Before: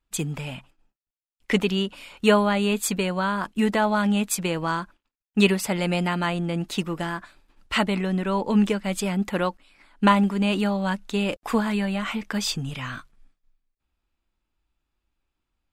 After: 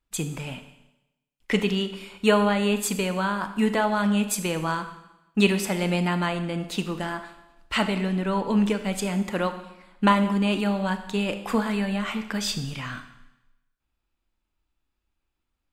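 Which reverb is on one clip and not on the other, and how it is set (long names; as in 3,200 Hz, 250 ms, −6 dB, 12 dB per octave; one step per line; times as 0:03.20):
four-comb reverb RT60 0.93 s, combs from 25 ms, DRR 8.5 dB
level −1.5 dB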